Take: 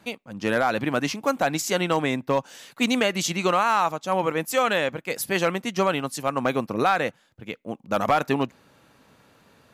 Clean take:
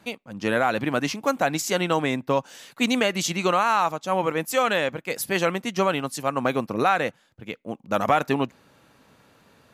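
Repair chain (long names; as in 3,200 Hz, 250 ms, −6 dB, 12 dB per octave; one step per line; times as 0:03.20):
clipped peaks rebuilt −12 dBFS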